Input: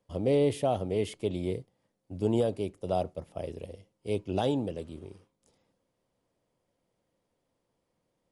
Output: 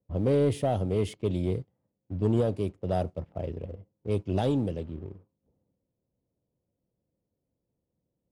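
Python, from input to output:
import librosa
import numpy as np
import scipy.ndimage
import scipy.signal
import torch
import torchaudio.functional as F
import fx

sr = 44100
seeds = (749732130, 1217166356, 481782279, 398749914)

y = scipy.signal.sosfilt(scipy.signal.butter(2, 45.0, 'highpass', fs=sr, output='sos'), x)
y = fx.low_shelf(y, sr, hz=200.0, db=10.5)
y = fx.env_lowpass(y, sr, base_hz=550.0, full_db=-23.0)
y = fx.high_shelf(y, sr, hz=9400.0, db=-9.0, at=(1.42, 2.58))
y = fx.leveller(y, sr, passes=1)
y = F.gain(torch.from_numpy(y), -4.0).numpy()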